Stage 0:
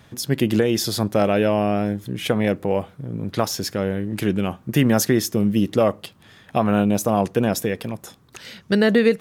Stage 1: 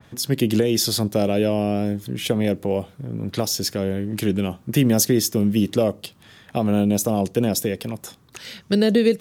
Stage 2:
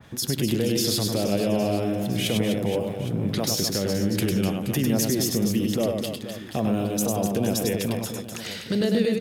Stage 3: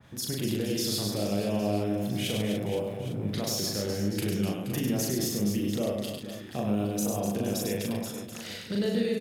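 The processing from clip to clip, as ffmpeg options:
-filter_complex "[0:a]acrossover=split=410|650|2800[s0][s1][s2][s3];[s2]acompressor=threshold=0.0112:ratio=6[s4];[s0][s1][s4][s3]amix=inputs=4:normalize=0,adynamicequalizer=threshold=0.00708:dfrequency=2500:dqfactor=0.7:tfrequency=2500:tqfactor=0.7:attack=5:release=100:ratio=0.375:range=2:mode=boostabove:tftype=highshelf"
-af "alimiter=limit=0.141:level=0:latency=1:release=63,aecho=1:1:100|250|475|812.5|1319:0.631|0.398|0.251|0.158|0.1,volume=1.12"
-filter_complex "[0:a]asplit=2[s0][s1];[s1]adelay=39,volume=0.794[s2];[s0][s2]amix=inputs=2:normalize=0,volume=0.422"

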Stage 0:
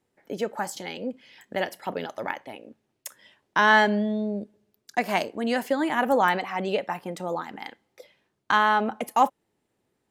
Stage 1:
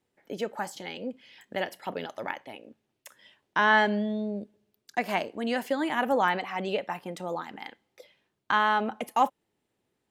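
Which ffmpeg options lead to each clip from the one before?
-filter_complex "[0:a]equalizer=f=3100:t=o:w=0.97:g=3.5,acrossover=split=2800[s0][s1];[s1]alimiter=level_in=1.88:limit=0.0631:level=0:latency=1:release=112,volume=0.531[s2];[s0][s2]amix=inputs=2:normalize=0,volume=0.668"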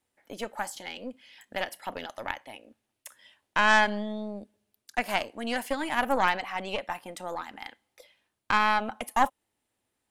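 -af "aeval=exprs='0.335*(cos(1*acos(clip(val(0)/0.335,-1,1)))-cos(1*PI/2))+0.0596*(cos(4*acos(clip(val(0)/0.335,-1,1)))-cos(4*PI/2))':c=same,equalizer=f=160:t=o:w=0.67:g=-11,equalizer=f=400:t=o:w=0.67:g=-8,equalizer=f=10000:t=o:w=0.67:g=8"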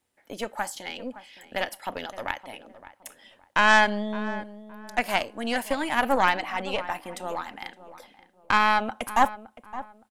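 -filter_complex "[0:a]asplit=2[s0][s1];[s1]adelay=566,lowpass=f=1400:p=1,volume=0.2,asplit=2[s2][s3];[s3]adelay=566,lowpass=f=1400:p=1,volume=0.31,asplit=2[s4][s5];[s5]adelay=566,lowpass=f=1400:p=1,volume=0.31[s6];[s0][s2][s4][s6]amix=inputs=4:normalize=0,volume=1.41"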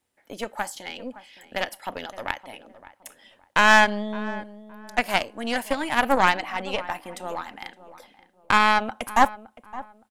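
-af "aeval=exprs='0.562*(cos(1*acos(clip(val(0)/0.562,-1,1)))-cos(1*PI/2))+0.0251*(cos(7*acos(clip(val(0)/0.562,-1,1)))-cos(7*PI/2))':c=same,volume=1.41"

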